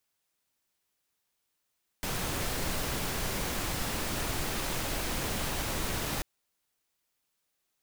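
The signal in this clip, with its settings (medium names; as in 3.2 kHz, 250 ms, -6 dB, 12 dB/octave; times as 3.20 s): noise pink, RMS -32.5 dBFS 4.19 s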